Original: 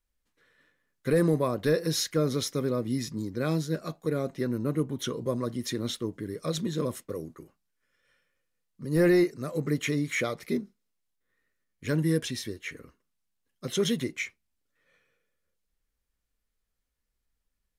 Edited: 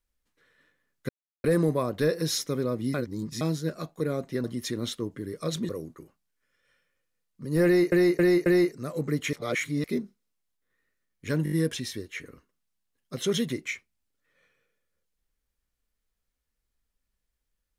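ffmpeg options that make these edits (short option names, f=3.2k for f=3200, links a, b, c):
-filter_complex "[0:a]asplit=16[a][b][c][d][e][f][g][h][i][j][k][l][m][n][o][p];[a]atrim=end=1.09,asetpts=PTS-STARTPTS,afade=t=out:st=1.086:d=0.004:c=hsin,apad=pad_dur=0.35[q];[b]atrim=start=1.09:end=2.032,asetpts=PTS-STARTPTS,afade=t=in:d=0.004:c=hsin[r];[c]atrim=start=2.438:end=3.002[s];[d]atrim=start=2.998:end=3.472,asetpts=PTS-STARTPTS,areverse[t];[e]atrim=start=3.468:end=4.502[u];[f]atrim=start=5.458:end=6.712[v];[g]atrim=start=7.088:end=9.322[w];[h]atrim=start=9.048:end=9.322[x];[i]atrim=start=9.048:end=9.322[y];[j]atrim=start=9.048:end=9.922[z];[k]atrim=start=9.918:end=10.432,asetpts=PTS-STARTPTS,areverse[aa];[l]atrim=start=10.428:end=12.052[ab];[m]atrim=start=12.028:end=12.052[ac];[n]atrim=start=12.028:end=12.052[ad];[o]atrim=start=12.028:end=12.052[ae];[p]atrim=start=12.028[af];[q][r]concat=n=2:v=0:a=1[ag];[ag][s]acrossfade=d=0.004:c1=hsin:c2=hsin[ah];[ah][t]acrossfade=d=0.004:c1=hsin:c2=hsin[ai];[ai][u]acrossfade=d=0.004:c1=hsin:c2=hsin[aj];[aj][v]acrossfade=d=0.004:c1=hsin:c2=hsin[ak];[ak][w]acrossfade=d=0.004:c1=hsin:c2=hsin[al];[al][x]acrossfade=d=0.004:c1=hsin:c2=hsin[am];[am][y]acrossfade=d=0.004:c1=hsin:c2=hsin[an];[an][z]acrossfade=d=0.004:c1=hsin:c2=hsin[ao];[ao][aa]acrossfade=d=0.004:c1=hsin:c2=hsin[ap];[ap][ab]acrossfade=d=0.004:c1=hsin:c2=hsin[aq];[aq][ac]acrossfade=d=0.004:c1=hsin:c2=hsin[ar];[ar][ad]acrossfade=d=0.004:c1=hsin:c2=hsin[as];[as][ae]acrossfade=d=0.004:c1=hsin:c2=hsin[at];[at][af]acrossfade=d=0.004:c1=hsin:c2=hsin"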